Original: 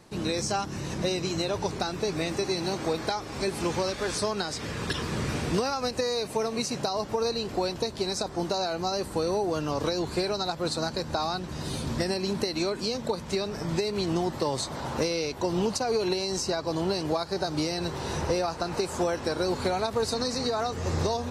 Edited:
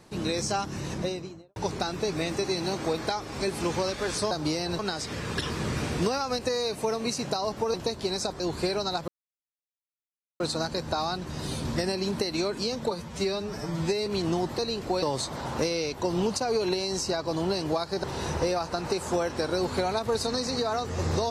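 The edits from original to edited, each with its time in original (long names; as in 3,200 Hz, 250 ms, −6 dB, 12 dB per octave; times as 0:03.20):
0:00.85–0:01.56: fade out and dull
0:07.26–0:07.70: move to 0:14.42
0:08.36–0:09.94: remove
0:10.62: splice in silence 1.32 s
0:13.13–0:13.90: time-stretch 1.5×
0:17.43–0:17.91: move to 0:04.31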